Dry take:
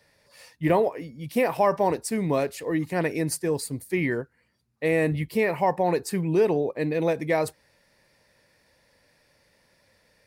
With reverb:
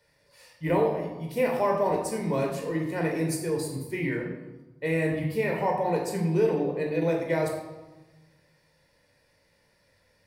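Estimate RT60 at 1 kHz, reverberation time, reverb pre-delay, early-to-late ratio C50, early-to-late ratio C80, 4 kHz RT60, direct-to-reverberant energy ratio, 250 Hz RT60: 1.1 s, 1.2 s, 18 ms, 4.0 dB, 6.5 dB, 0.80 s, 0.0 dB, 1.5 s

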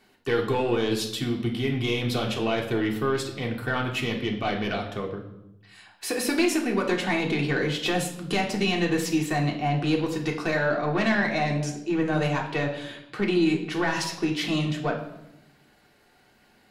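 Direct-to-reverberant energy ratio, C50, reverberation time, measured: -0.5 dB, 8.0 dB, 0.85 s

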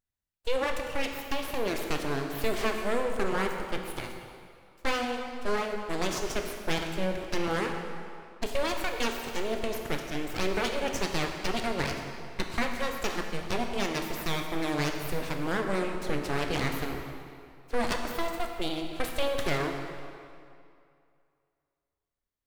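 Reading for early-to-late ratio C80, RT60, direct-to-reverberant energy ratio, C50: 5.5 dB, 2.4 s, 3.0 dB, 4.5 dB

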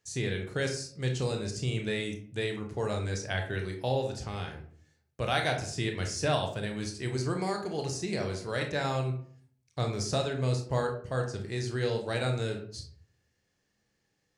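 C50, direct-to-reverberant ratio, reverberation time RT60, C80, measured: 8.0 dB, 2.5 dB, 0.50 s, 12.0 dB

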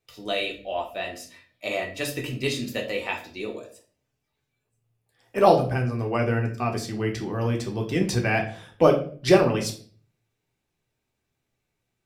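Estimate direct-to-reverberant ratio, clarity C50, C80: 1.0 dB, 10.0 dB, 15.0 dB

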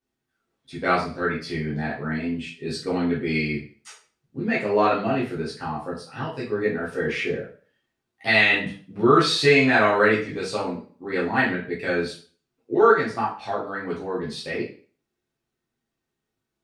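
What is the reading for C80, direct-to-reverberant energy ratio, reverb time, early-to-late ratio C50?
11.5 dB, -7.5 dB, 0.40 s, 7.0 dB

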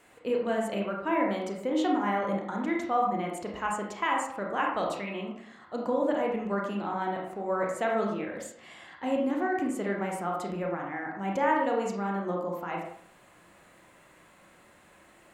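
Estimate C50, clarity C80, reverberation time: 3.0 dB, 6.0 dB, 0.60 s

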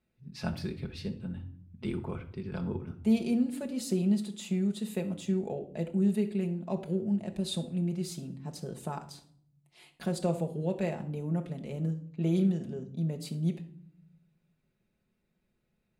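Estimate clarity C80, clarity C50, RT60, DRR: 17.0 dB, 13.0 dB, 0.60 s, 2.0 dB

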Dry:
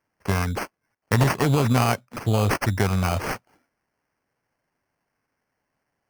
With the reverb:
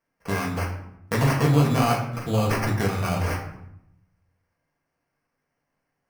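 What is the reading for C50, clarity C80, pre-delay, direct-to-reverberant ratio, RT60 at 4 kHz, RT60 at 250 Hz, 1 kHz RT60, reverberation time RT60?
6.5 dB, 9.5 dB, 4 ms, -2.5 dB, 0.50 s, 1.1 s, 0.75 s, 0.80 s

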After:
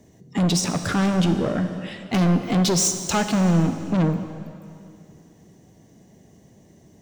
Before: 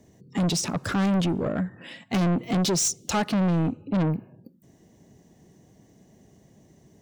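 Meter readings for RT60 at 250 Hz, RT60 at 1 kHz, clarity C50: 2.5 s, 2.5 s, 8.5 dB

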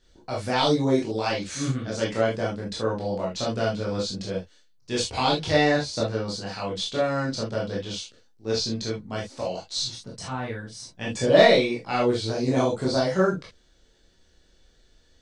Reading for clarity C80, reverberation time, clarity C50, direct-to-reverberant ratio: 21.0 dB, not exponential, 6.0 dB, -5.0 dB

